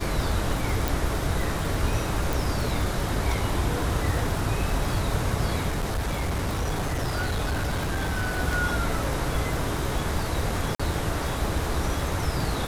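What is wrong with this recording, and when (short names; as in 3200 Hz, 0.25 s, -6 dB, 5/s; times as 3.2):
crackle 91/s -29 dBFS
0.88 pop
2.33 pop
5.69–8.4 clipped -23 dBFS
10.75–10.79 gap 45 ms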